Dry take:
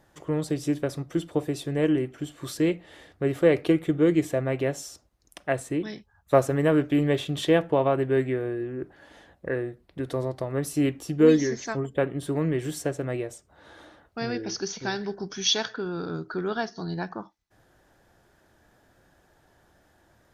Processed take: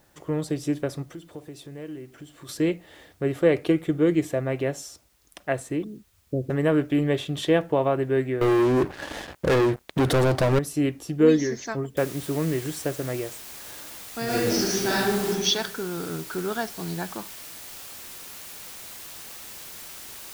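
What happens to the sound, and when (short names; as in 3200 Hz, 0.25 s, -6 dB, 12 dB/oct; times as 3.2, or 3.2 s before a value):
1.13–2.49 compressor 2:1, threshold -46 dBFS
5.84–6.5 inverse Chebyshev low-pass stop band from 1000 Hz, stop band 50 dB
8.41–10.59 sample leveller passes 5
11.97 noise floor step -66 dB -41 dB
14.24–15.28 reverb throw, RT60 1.1 s, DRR -7.5 dB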